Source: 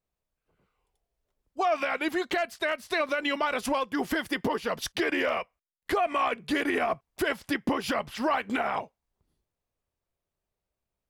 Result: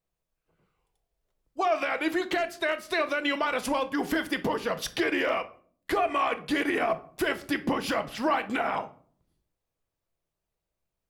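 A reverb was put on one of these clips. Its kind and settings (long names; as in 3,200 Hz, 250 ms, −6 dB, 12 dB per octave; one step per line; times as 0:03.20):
rectangular room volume 520 cubic metres, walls furnished, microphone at 0.68 metres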